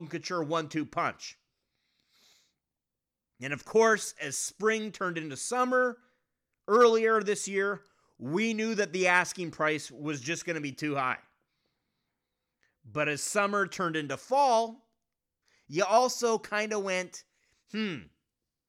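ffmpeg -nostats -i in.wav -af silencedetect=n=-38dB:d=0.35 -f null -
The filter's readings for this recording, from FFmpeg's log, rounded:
silence_start: 1.31
silence_end: 3.42 | silence_duration: 2.11
silence_start: 5.93
silence_end: 6.68 | silence_duration: 0.76
silence_start: 7.76
silence_end: 8.22 | silence_duration: 0.45
silence_start: 11.16
silence_end: 12.95 | silence_duration: 1.80
silence_start: 14.71
silence_end: 15.71 | silence_duration: 1.00
silence_start: 17.19
silence_end: 17.74 | silence_duration: 0.55
silence_start: 18.00
silence_end: 18.68 | silence_duration: 0.68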